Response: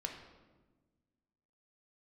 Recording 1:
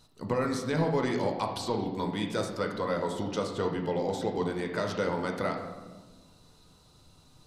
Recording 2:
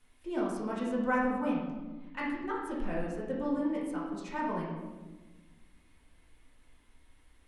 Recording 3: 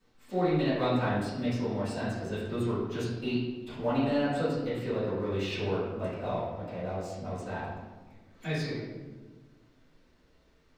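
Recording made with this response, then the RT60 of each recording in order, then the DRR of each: 1; 1.3 s, 1.3 s, 1.3 s; 2.0 dB, -6.0 dB, -15.0 dB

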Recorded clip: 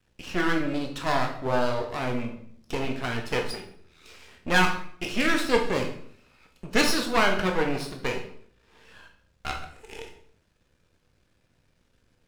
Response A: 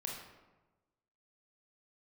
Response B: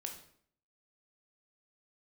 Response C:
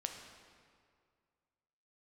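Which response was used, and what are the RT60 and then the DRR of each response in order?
B; 1.2 s, 0.60 s, 2.1 s; -1.5 dB, 2.5 dB, 3.5 dB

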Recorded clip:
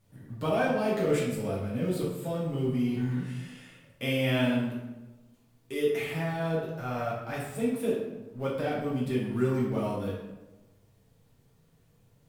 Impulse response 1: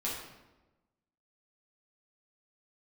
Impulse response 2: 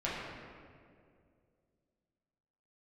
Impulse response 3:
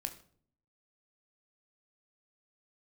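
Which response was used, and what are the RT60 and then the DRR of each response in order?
1; 1.1 s, 2.3 s, 0.55 s; -7.0 dB, -8.5 dB, 5.5 dB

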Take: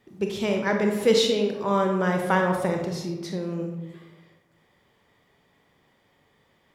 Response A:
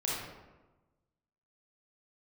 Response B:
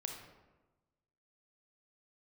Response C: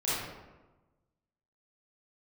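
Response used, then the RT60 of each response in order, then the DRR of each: B; 1.2 s, 1.2 s, 1.2 s; -6.0 dB, 2.5 dB, -11.0 dB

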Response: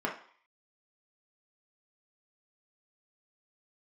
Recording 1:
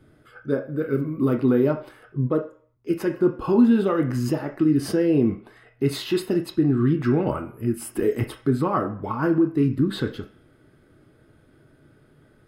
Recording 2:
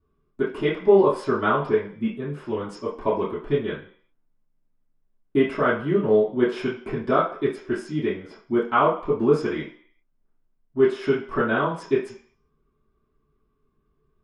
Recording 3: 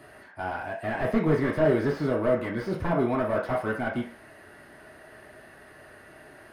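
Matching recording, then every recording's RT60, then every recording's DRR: 3; 0.50 s, 0.50 s, 0.50 s; 3.5 dB, -10.5 dB, -2.5 dB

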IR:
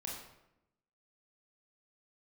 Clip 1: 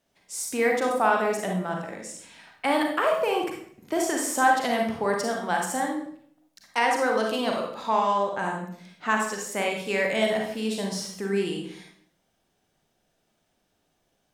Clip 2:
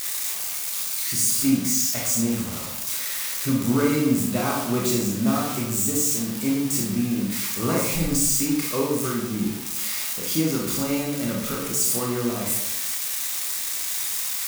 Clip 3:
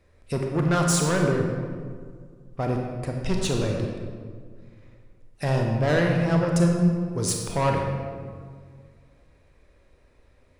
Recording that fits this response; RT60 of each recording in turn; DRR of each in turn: 2; 0.60 s, 0.85 s, 1.9 s; 0.5 dB, -2.5 dB, 0.5 dB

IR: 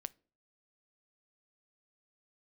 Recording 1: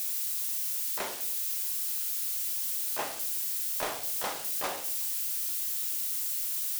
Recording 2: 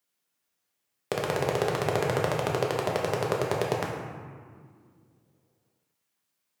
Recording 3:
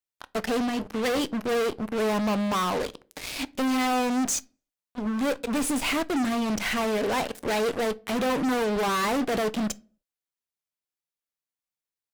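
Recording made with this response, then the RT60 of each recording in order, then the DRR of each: 3; 0.65 s, 2.0 s, 0.45 s; 5.0 dB, -2.0 dB, 17.5 dB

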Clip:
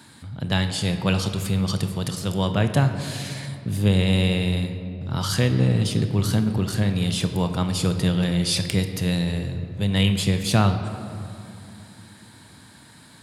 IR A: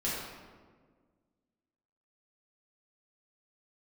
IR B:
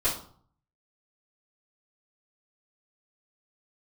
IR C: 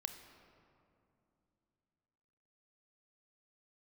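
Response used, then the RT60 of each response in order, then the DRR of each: C; 1.6 s, 0.55 s, 2.8 s; -8.5 dB, -12.0 dB, 7.5 dB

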